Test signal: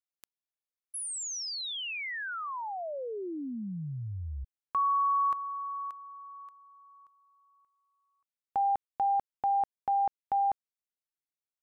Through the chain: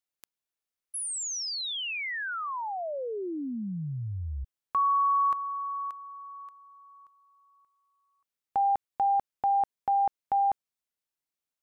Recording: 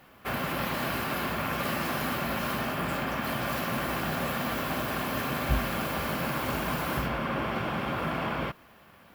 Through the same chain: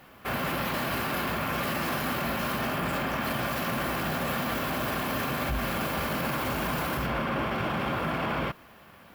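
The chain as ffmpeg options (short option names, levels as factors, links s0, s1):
-af "alimiter=limit=0.0631:level=0:latency=1:release=14,volume=1.41"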